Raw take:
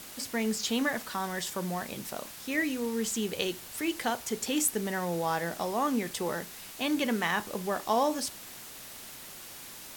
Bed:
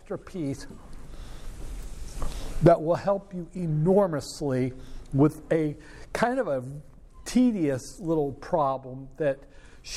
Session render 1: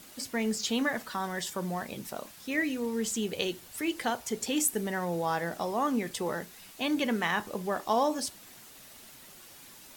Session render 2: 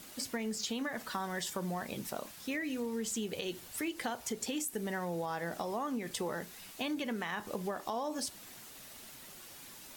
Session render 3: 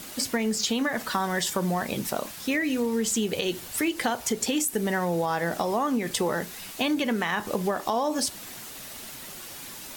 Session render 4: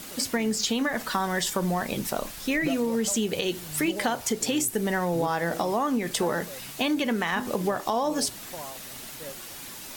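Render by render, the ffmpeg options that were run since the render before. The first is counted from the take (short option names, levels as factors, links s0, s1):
-af "afftdn=nr=7:nf=-46"
-af "alimiter=limit=0.0841:level=0:latency=1:release=166,acompressor=threshold=0.0224:ratio=6"
-af "volume=3.35"
-filter_complex "[1:a]volume=0.158[s0];[0:a][s0]amix=inputs=2:normalize=0"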